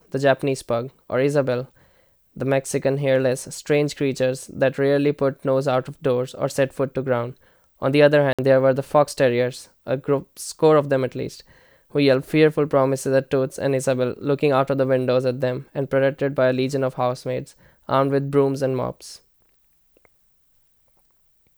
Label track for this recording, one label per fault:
2.650000	2.650000	drop-out 4.1 ms
8.330000	8.390000	drop-out 56 ms

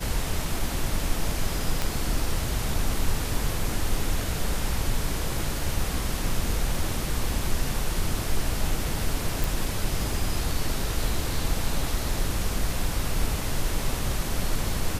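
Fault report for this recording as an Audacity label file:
1.820000	1.820000	click −11 dBFS
9.440000	9.440000	click

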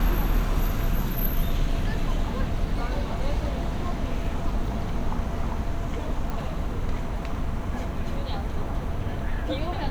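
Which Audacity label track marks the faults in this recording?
6.300000	6.300000	click

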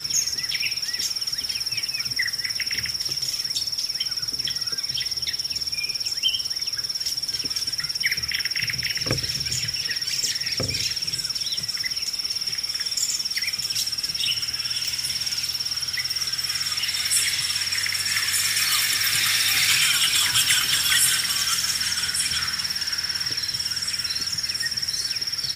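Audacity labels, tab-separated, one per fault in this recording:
14.880000	14.880000	click

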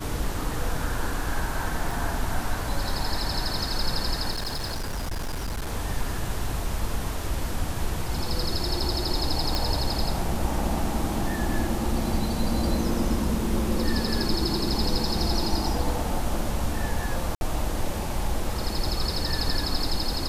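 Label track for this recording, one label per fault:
1.910000	1.910000	drop-out 2.3 ms
4.310000	5.730000	clipping −26 dBFS
9.550000	9.550000	click
17.350000	17.410000	drop-out 61 ms

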